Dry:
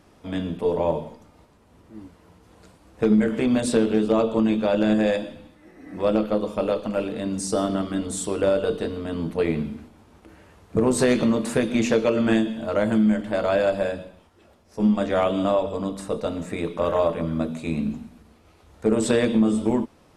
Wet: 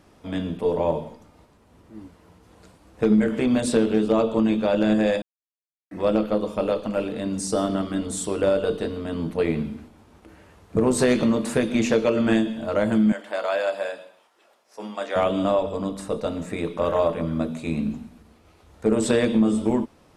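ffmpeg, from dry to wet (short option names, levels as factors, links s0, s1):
-filter_complex "[0:a]asettb=1/sr,asplit=3[s0][s1][s2];[s0]atrim=end=13.124[s3];[s1]atrim=start=13.12:end=15.16,asetpts=PTS-STARTPTS,afade=t=in:d=0.004:c=qsin,afade=t=out:st=2.036:d=0.004:c=qsin,highpass=610[s4];[s2]atrim=start=15.156[s5];[s3][s4]acrossfade=d=0.004:c1=hsin:c2=qsin[s6];[s6][s5]acrossfade=d=0.004:c1=qsin:c2=hsin,asplit=3[s7][s8][s9];[s7]atrim=end=5.22,asetpts=PTS-STARTPTS,afade=t=out:st=5.216:d=0.004:c=hsin[s10];[s8]atrim=start=5.22:end=5.91,asetpts=PTS-STARTPTS,volume=0[s11];[s9]atrim=start=5.91,asetpts=PTS-STARTPTS,afade=t=in:d=0.004:c=hsin[s12];[s10][s11][s12]concat=n=3:v=0:a=1"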